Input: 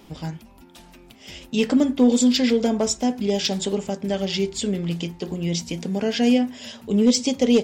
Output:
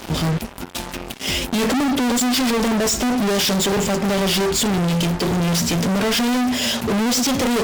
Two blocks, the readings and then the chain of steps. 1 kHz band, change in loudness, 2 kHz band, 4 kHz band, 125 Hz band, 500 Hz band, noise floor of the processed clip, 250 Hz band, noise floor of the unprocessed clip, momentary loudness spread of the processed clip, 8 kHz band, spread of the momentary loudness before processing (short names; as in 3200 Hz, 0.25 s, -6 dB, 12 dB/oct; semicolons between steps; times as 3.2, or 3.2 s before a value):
+10.0 dB, +2.5 dB, +10.0 dB, +6.5 dB, +7.0 dB, +1.5 dB, -34 dBFS, +1.0 dB, -49 dBFS, 6 LU, +7.0 dB, 13 LU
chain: fuzz box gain 43 dB, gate -47 dBFS; gain -4.5 dB